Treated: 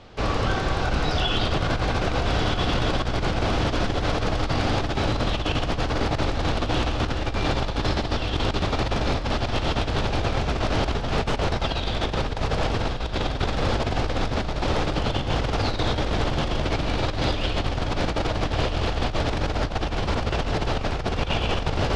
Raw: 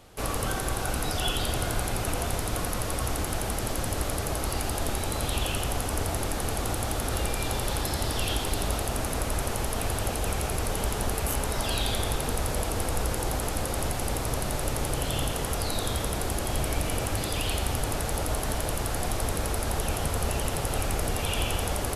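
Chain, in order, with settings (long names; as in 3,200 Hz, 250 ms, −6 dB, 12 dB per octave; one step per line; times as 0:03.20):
sub-octave generator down 1 octave, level −5 dB
low-pass filter 5,000 Hz 24 dB per octave
feedback delay with all-pass diffusion 1,349 ms, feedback 52%, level −3 dB
compressor whose output falls as the input rises −27 dBFS, ratio −0.5
level +4 dB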